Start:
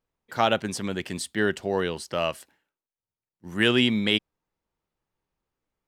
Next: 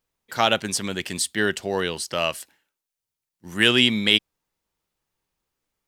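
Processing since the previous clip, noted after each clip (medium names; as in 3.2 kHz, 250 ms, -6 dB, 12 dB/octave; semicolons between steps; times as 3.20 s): treble shelf 2.2 kHz +10 dB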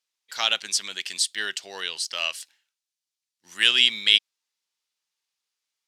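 band-pass filter 4.7 kHz, Q 1; trim +4 dB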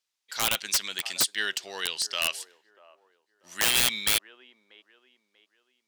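feedback echo behind a band-pass 639 ms, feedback 35%, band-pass 580 Hz, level -17 dB; integer overflow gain 14.5 dB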